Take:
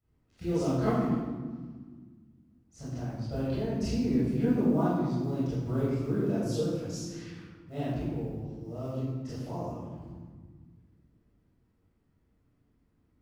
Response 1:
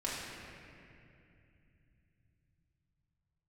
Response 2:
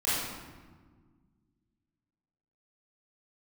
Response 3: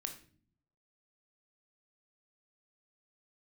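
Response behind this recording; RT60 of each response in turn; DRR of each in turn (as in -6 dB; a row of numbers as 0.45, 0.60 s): 2; 2.6, 1.6, 0.45 s; -7.0, -12.0, 4.5 dB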